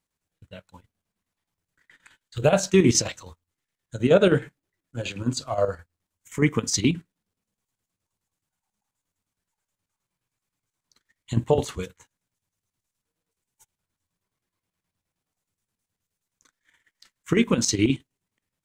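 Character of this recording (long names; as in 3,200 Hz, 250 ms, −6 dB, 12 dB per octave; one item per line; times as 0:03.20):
chopped level 9.5 Hz, depth 60%, duty 65%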